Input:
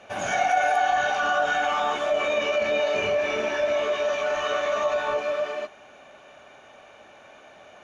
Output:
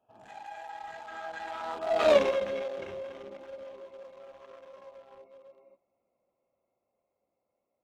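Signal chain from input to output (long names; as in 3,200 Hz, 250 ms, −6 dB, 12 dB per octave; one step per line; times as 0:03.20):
adaptive Wiener filter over 25 samples
source passing by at 0:02.12, 33 m/s, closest 2.4 metres
level +7 dB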